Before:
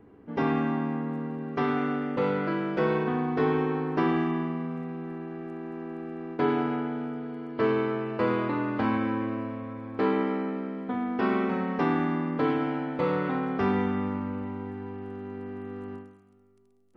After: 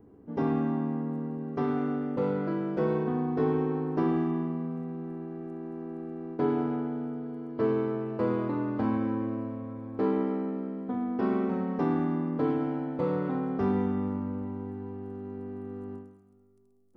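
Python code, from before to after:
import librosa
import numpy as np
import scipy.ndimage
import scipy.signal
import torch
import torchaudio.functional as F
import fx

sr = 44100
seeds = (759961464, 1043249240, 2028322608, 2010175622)

y = fx.peak_eq(x, sr, hz=2500.0, db=-13.0, octaves=2.4)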